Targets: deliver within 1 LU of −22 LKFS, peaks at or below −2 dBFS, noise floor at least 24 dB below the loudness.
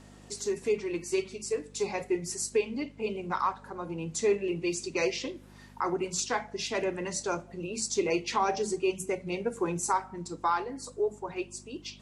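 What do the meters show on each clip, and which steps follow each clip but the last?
mains hum 50 Hz; hum harmonics up to 250 Hz; level of the hum −52 dBFS; integrated loudness −31.5 LKFS; sample peak −15.5 dBFS; target loudness −22.0 LKFS
→ hum removal 50 Hz, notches 5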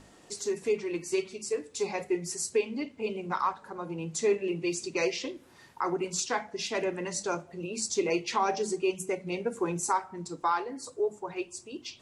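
mains hum none found; integrated loudness −31.5 LKFS; sample peak −15.5 dBFS; target loudness −22.0 LKFS
→ level +9.5 dB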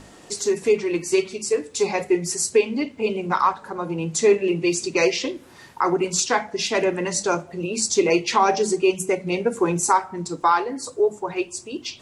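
integrated loudness −22.0 LKFS; sample peak −6.0 dBFS; background noise floor −47 dBFS

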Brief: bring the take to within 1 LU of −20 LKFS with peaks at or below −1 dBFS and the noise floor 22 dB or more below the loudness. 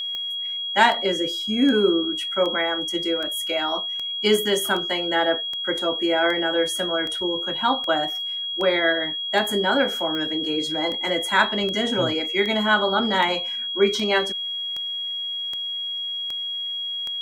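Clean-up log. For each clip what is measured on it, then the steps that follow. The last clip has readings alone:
number of clicks 23; interfering tone 3,300 Hz; level of the tone −26 dBFS; integrated loudness −22.0 LKFS; sample peak −3.0 dBFS; target loudness −20.0 LKFS
→ click removal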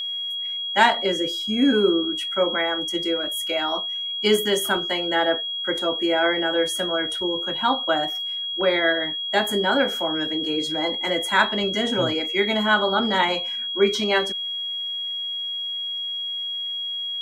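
number of clicks 0; interfering tone 3,300 Hz; level of the tone −26 dBFS
→ notch filter 3,300 Hz, Q 30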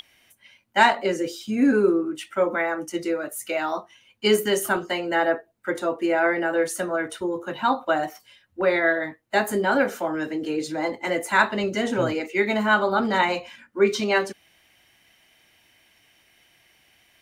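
interfering tone none found; integrated loudness −23.5 LKFS; sample peak −3.5 dBFS; target loudness −20.0 LKFS
→ level +3.5 dB
brickwall limiter −1 dBFS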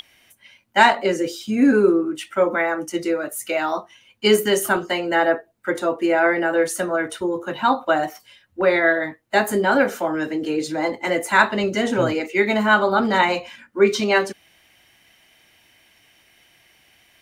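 integrated loudness −20.0 LKFS; sample peak −1.0 dBFS; background noise floor −59 dBFS

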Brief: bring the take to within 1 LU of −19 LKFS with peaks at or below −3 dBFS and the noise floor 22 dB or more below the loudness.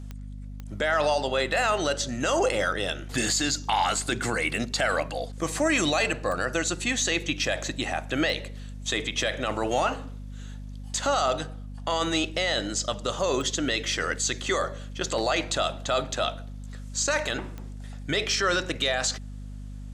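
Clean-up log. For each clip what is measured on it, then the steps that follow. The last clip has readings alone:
number of clicks 6; mains hum 50 Hz; hum harmonics up to 250 Hz; level of the hum −36 dBFS; integrated loudness −26.5 LKFS; sample peak −12.0 dBFS; target loudness −19.0 LKFS
→ click removal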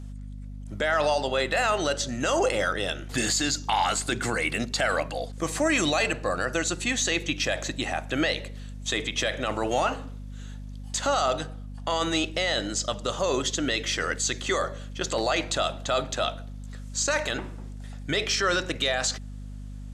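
number of clicks 0; mains hum 50 Hz; hum harmonics up to 250 Hz; level of the hum −36 dBFS
→ mains-hum notches 50/100/150/200/250 Hz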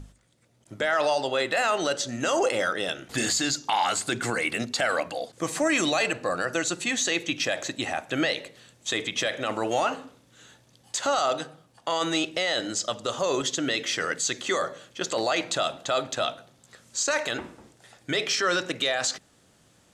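mains hum none found; integrated loudness −26.5 LKFS; sample peak −12.5 dBFS; target loudness −19.0 LKFS
→ level +7.5 dB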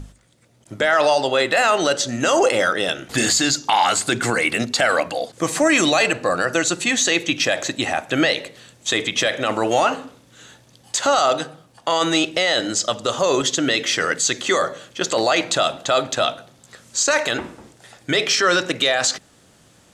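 integrated loudness −19.0 LKFS; sample peak −5.0 dBFS; background noise floor −53 dBFS

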